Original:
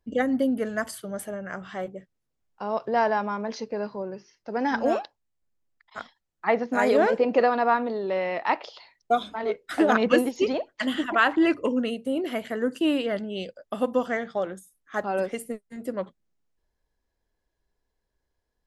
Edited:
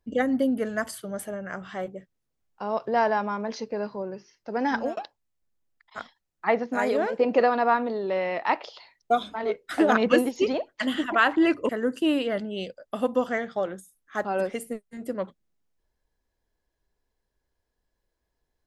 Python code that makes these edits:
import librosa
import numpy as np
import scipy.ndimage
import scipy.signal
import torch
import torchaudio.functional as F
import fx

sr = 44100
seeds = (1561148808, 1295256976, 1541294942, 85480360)

y = fx.edit(x, sr, fx.fade_out_span(start_s=4.7, length_s=0.27, curve='qsin'),
    fx.fade_out_to(start_s=6.48, length_s=0.71, floor_db=-8.0),
    fx.cut(start_s=11.69, length_s=0.79), tone=tone)